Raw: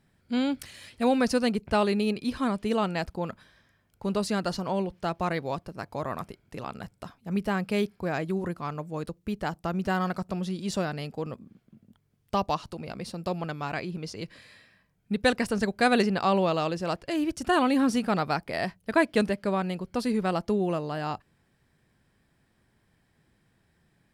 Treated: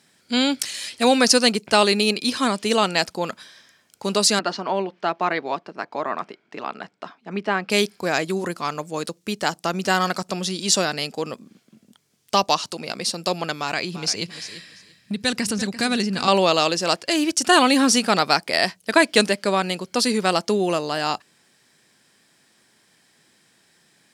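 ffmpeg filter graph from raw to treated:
ffmpeg -i in.wav -filter_complex "[0:a]asettb=1/sr,asplit=3[link_01][link_02][link_03];[link_01]atrim=end=4.394[link_04];[link_02]atrim=start=4.39:end=7.7,asetpts=PTS-STARTPTS,afade=type=in:duration=0.004:curve=qsin,afade=type=out:start_time=3.306:duration=0.004:curve=qsin,highpass=220,lowpass=2200,bandreject=frequency=520:width=8.1[link_05];[link_03]atrim=start=7.696[link_06];[link_04][link_05]acrossfade=duration=0.004:curve1=hsin:curve2=qsin[link_07];[link_07][link_06]acrossfade=duration=0.004:curve1=qsin:curve2=hsin,asettb=1/sr,asplit=3[link_08][link_09][link_10];[link_08]atrim=end=13.594[link_11];[link_09]atrim=start=13.59:end=16.28,asetpts=PTS-STARTPTS,afade=type=in:duration=0.004:curve=qsin,afade=type=out:start_time=2.686:duration=0.004:curve=qsin,asubboost=boost=8.5:cutoff=230,acompressor=threshold=-28dB:ratio=3:attack=3.2:release=140:knee=1:detection=peak,aecho=1:1:343|686:0.211|0.038,atrim=end_sample=118629[link_12];[link_10]atrim=start=16.276[link_13];[link_11][link_12]acrossfade=duration=0.004:curve1=hsin:curve2=qsin[link_14];[link_14][link_13]acrossfade=duration=0.004:curve1=qsin:curve2=hsin,highpass=230,equalizer=frequency=6400:width_type=o:width=2.3:gain=14.5,alimiter=level_in=7.5dB:limit=-1dB:release=50:level=0:latency=1,volume=-1dB" out.wav

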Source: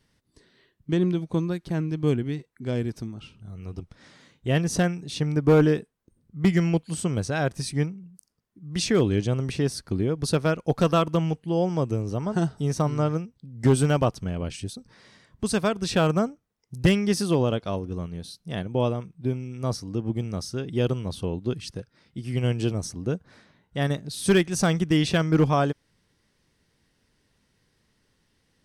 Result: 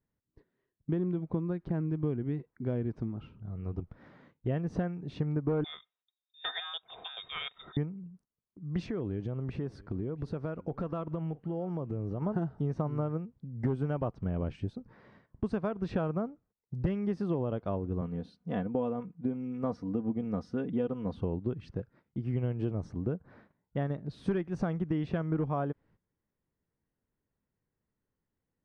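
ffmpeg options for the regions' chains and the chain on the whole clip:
ffmpeg -i in.wav -filter_complex "[0:a]asettb=1/sr,asplit=3[link_01][link_02][link_03];[link_01]atrim=end=5.644[link_04];[link_02]atrim=start=5.64:end=7.77,asetpts=PTS-STARTPTS,afade=type=in:duration=0.004:curve=qsin,afade=type=out:start_time=2.126:duration=0.004:curve=qsin,aecho=1:1:3.6:0.47,atrim=end_sample=93933,lowpass=frequency=3200:width_type=q:width=0.5098,lowpass=frequency=3200:width_type=q:width=0.6013,lowpass=frequency=3200:width_type=q:width=0.9,lowpass=frequency=3200:width_type=q:width=2.563,afreqshift=-3800[link_05];[link_03]atrim=start=7.766[link_06];[link_04][link_05]acrossfade=duration=0.004:curve1=hsin:curve2=qsin[link_07];[link_07][link_06]acrossfade=duration=0.004:curve1=qsin:curve2=hsin,asettb=1/sr,asplit=3[link_08][link_09][link_10];[link_08]atrim=end=8.864[link_11];[link_09]atrim=start=8.86:end=12.22,asetpts=PTS-STARTPTS,afade=type=in:duration=0.004:curve=qsin,afade=type=out:start_time=3.356:duration=0.004:curve=qsin,acompressor=threshold=-31dB:ratio=5:attack=3.2:release=140:knee=1:detection=peak,aecho=1:1:669:0.0708,atrim=end_sample=148176[link_12];[link_10]atrim=start=12.216[link_13];[link_11][link_12]acrossfade=duration=0.004:curve1=hsin:curve2=qsin[link_14];[link_14][link_13]acrossfade=duration=0.004:curve1=qsin:curve2=hsin,asettb=1/sr,asplit=3[link_15][link_16][link_17];[link_15]atrim=end=18.014[link_18];[link_16]atrim=start=18.01:end=21.17,asetpts=PTS-STARTPTS,afade=type=in:duration=0.004:curve=qsin,afade=type=out:start_time=3.156:duration=0.004:curve=qsin,highpass=100,aecho=1:1:4.1:0.63,atrim=end_sample=139356[link_19];[link_17]atrim=start=21.166[link_20];[link_18][link_19]acrossfade=duration=0.004:curve1=hsin:curve2=qsin[link_21];[link_21][link_20]acrossfade=duration=0.004:curve1=qsin:curve2=hsin,agate=range=-16dB:threshold=-55dB:ratio=16:detection=peak,lowpass=1300,acompressor=threshold=-28dB:ratio=6" out.wav

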